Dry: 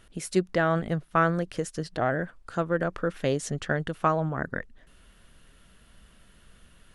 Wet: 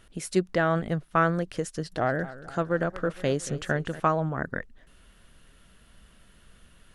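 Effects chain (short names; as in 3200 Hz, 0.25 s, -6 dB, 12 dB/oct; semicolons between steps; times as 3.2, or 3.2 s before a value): 1.69–4 warbling echo 0.23 s, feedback 56%, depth 135 cents, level -16.5 dB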